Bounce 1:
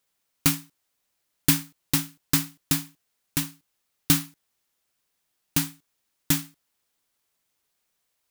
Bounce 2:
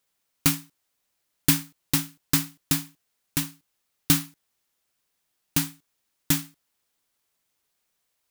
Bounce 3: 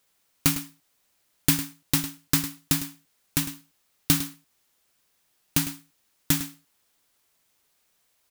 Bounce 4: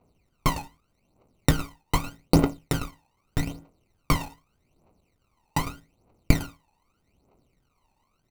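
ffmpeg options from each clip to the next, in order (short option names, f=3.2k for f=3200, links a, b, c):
-af anull
-af "acompressor=threshold=-37dB:ratio=1.5,aecho=1:1:104:0.237,volume=6.5dB"
-af "acrusher=samples=26:mix=1:aa=0.000001,aphaser=in_gain=1:out_gain=1:delay=1.2:decay=0.78:speed=0.82:type=triangular,volume=-4dB"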